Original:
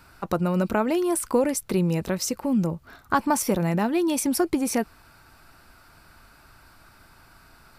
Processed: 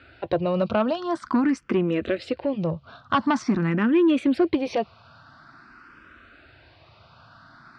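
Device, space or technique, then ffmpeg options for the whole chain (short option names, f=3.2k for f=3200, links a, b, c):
barber-pole phaser into a guitar amplifier: -filter_complex "[0:a]asplit=2[a][b];[b]afreqshift=0.47[c];[a][c]amix=inputs=2:normalize=1,asoftclip=type=tanh:threshold=-19dB,highpass=100,equalizer=f=180:t=q:w=4:g=-6,equalizer=f=430:t=q:w=4:g=-5,equalizer=f=860:t=q:w=4:g=-8,equalizer=f=2.2k:t=q:w=4:g=-4,lowpass=f=3.8k:w=0.5412,lowpass=f=3.8k:w=1.3066,volume=8.5dB"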